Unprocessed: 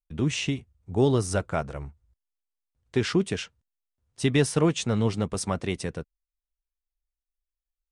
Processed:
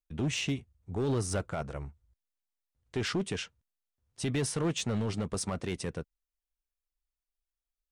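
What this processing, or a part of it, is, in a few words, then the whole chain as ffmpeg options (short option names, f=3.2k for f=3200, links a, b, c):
limiter into clipper: -af "alimiter=limit=-18dB:level=0:latency=1:release=22,asoftclip=type=hard:threshold=-22dB,volume=-3dB"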